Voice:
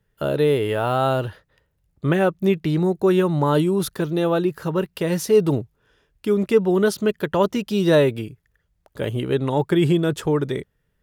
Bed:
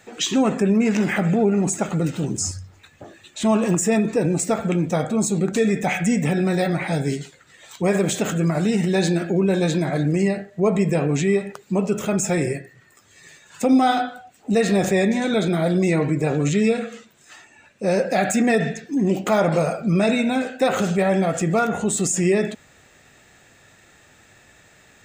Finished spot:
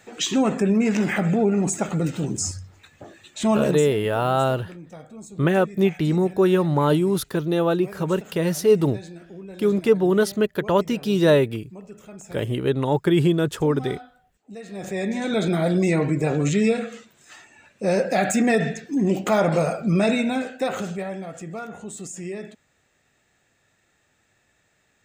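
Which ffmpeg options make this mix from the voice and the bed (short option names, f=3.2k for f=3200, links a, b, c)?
-filter_complex "[0:a]adelay=3350,volume=-0.5dB[a];[1:a]volume=17.5dB,afade=t=out:st=3.58:d=0.31:silence=0.11885,afade=t=in:st=14.7:d=0.79:silence=0.112202,afade=t=out:st=20.07:d=1.11:silence=0.223872[b];[a][b]amix=inputs=2:normalize=0"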